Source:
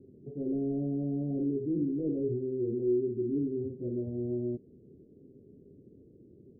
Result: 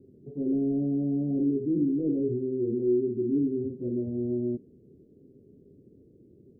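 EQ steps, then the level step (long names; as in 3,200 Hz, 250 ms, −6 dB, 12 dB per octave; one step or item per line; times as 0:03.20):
dynamic equaliser 250 Hz, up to +6 dB, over −44 dBFS, Q 1.2
0.0 dB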